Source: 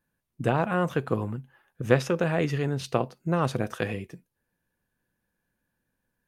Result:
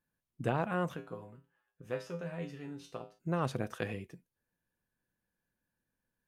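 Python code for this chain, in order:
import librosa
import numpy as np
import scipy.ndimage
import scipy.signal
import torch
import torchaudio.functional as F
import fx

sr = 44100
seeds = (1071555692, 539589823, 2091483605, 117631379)

y = fx.comb_fb(x, sr, f0_hz=57.0, decay_s=0.32, harmonics='odd', damping=0.0, mix_pct=90, at=(0.95, 3.18), fade=0.02)
y = y * librosa.db_to_amplitude(-7.5)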